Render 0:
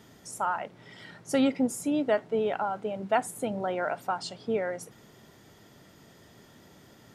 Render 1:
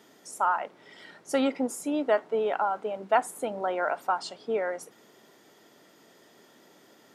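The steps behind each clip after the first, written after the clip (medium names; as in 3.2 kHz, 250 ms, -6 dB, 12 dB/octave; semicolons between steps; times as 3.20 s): dynamic bell 1.1 kHz, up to +6 dB, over -44 dBFS, Q 1.3; Chebyshev high-pass 330 Hz, order 2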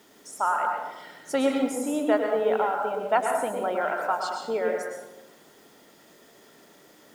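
word length cut 10-bit, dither none; reverberation RT60 0.95 s, pre-delay 98 ms, DRR 1.5 dB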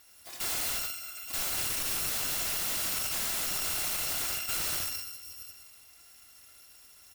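bit-reversed sample order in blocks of 256 samples; multi-tap echo 77/406/746 ms -5.5/-17/-19 dB; integer overflow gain 25 dB; trim -2 dB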